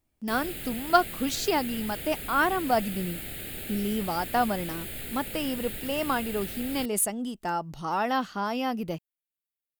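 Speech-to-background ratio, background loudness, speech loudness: 7.0 dB, -36.0 LUFS, -29.0 LUFS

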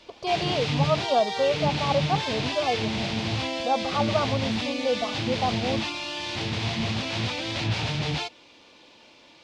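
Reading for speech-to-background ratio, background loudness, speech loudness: 0.0 dB, -28.0 LUFS, -28.0 LUFS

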